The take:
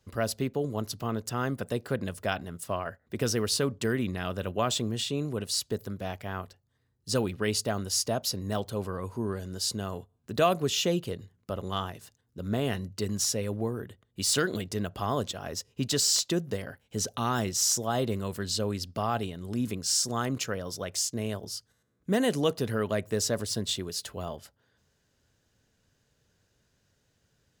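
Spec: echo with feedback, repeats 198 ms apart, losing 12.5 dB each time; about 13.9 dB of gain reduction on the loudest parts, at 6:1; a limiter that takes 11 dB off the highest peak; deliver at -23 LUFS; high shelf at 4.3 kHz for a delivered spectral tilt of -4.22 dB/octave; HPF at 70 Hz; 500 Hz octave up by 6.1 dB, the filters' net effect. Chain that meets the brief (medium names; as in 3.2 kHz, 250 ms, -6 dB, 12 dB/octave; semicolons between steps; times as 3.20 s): high-pass 70 Hz; peaking EQ 500 Hz +7.5 dB; treble shelf 4.3 kHz -6.5 dB; compression 6:1, threshold -31 dBFS; peak limiter -29.5 dBFS; feedback delay 198 ms, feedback 24%, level -12.5 dB; trim +16.5 dB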